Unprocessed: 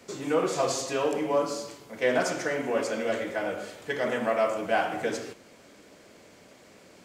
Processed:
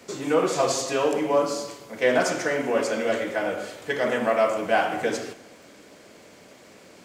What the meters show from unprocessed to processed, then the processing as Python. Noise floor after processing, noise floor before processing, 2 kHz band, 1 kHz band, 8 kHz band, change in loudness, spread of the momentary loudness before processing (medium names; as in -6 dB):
-50 dBFS, -54 dBFS, +4.0 dB, +4.0 dB, +4.0 dB, +4.0 dB, 9 LU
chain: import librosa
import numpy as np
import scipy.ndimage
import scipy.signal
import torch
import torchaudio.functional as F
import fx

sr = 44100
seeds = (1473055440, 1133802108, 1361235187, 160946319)

y = fx.low_shelf(x, sr, hz=73.0, db=-6.0)
y = fx.rev_schroeder(y, sr, rt60_s=1.5, comb_ms=33, drr_db=18.0)
y = fx.dmg_crackle(y, sr, seeds[0], per_s=58.0, level_db=-54.0)
y = y * 10.0 ** (4.0 / 20.0)